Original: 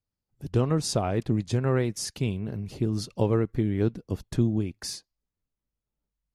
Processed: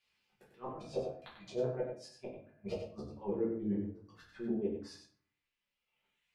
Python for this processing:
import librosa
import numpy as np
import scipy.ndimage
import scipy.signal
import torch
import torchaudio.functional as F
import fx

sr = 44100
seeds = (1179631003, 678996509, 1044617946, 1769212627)

y = fx.dereverb_blind(x, sr, rt60_s=1.1)
y = fx.low_shelf(y, sr, hz=180.0, db=5.5)
y = fx.auto_swell(y, sr, attack_ms=269.0)
y = fx.over_compress(y, sr, threshold_db=-39.0, ratio=-1.0)
y = fx.auto_swell(y, sr, attack_ms=280.0)
y = fx.small_body(y, sr, hz=(650.0, 2400.0), ring_ms=60, db=16, at=(0.66, 2.88))
y = fx.gate_flip(y, sr, shuts_db=-34.0, range_db=-31)
y = fx.auto_wah(y, sr, base_hz=490.0, top_hz=2700.0, q=2.4, full_db=-45.5, direction='down')
y = fx.chorus_voices(y, sr, voices=2, hz=0.66, base_ms=17, depth_ms=3.5, mix_pct=35)
y = y + 10.0 ** (-7.5 / 20.0) * np.pad(y, (int(94 * sr / 1000.0), 0))[:len(y)]
y = fx.room_shoebox(y, sr, seeds[0], volume_m3=39.0, walls='mixed', distance_m=1.1)
y = F.gain(torch.from_numpy(y), 17.0).numpy()